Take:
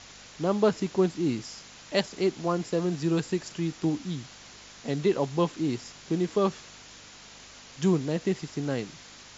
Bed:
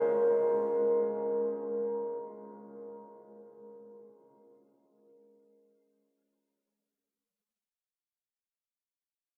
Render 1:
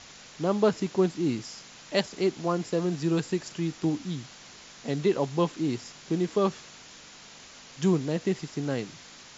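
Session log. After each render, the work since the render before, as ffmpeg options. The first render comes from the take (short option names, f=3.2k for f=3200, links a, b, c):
-af "bandreject=f=50:t=h:w=4,bandreject=f=100:t=h:w=4"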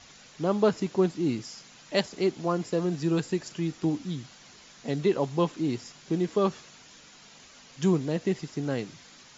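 -af "afftdn=nr=6:nf=-49"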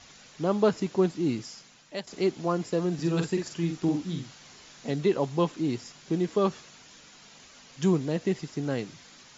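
-filter_complex "[0:a]asettb=1/sr,asplit=3[a][b][c];[a]atrim=end=2.944[d];[b]atrim=start=2.94:end=4.92,asetpts=PTS-STARTPTS,afade=t=in:d=0.004:c=qsin,afade=t=out:st=1.976:d=0.004:c=qsin,asplit=2[e][f];[f]adelay=47,volume=-5dB[g];[e][g]amix=inputs=2:normalize=0,atrim=end_sample=87318[h];[c]atrim=start=4.916[i];[d][h]acrossfade=d=0.004:c1=hsin:c2=qsin[j];[j][i]acrossfade=d=0.004:c1=qsin:c2=hsin,asplit=2[k][l];[k]atrim=end=2.07,asetpts=PTS-STARTPTS,afade=t=out:st=1.43:d=0.64:silence=0.211349[m];[l]atrim=start=2.07,asetpts=PTS-STARTPTS,afade=t=in:d=0.004:c=hsin:silence=0.211349[n];[m][n]concat=n=2:v=0:a=1"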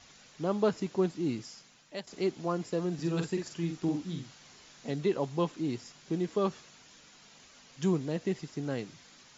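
-af "volume=-4.5dB"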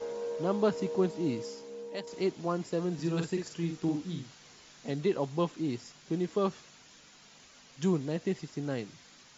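-filter_complex "[1:a]volume=-9.5dB[a];[0:a][a]amix=inputs=2:normalize=0"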